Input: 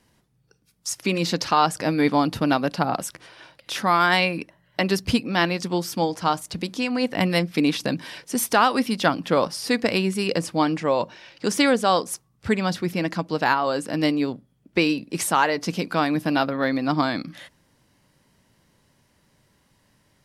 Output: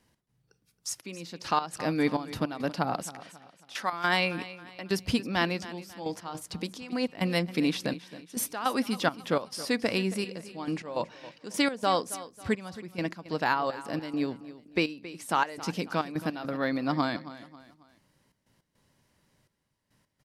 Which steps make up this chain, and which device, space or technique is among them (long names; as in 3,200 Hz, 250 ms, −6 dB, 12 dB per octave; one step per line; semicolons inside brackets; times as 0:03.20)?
0:03.03–0:03.93: meter weighting curve A
trance gate with a delay (gate pattern "x.xxxxx...x.xxx." 104 BPM −12 dB; repeating echo 272 ms, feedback 39%, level −16 dB)
level −6 dB